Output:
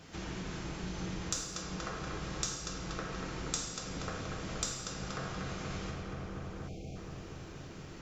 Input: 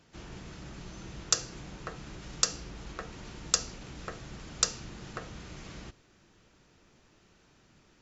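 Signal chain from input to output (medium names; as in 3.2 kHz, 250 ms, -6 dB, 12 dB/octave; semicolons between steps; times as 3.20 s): on a send: filtered feedback delay 238 ms, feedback 80%, low-pass 2.3 kHz, level -6 dB; on the sum: compression 3:1, threshold -49 dBFS, peak gain reduction 21.5 dB; gated-style reverb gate 310 ms falling, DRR -2 dB; time-frequency box 6.68–6.96 s, 810–2100 Hz -29 dB; trim +7 dB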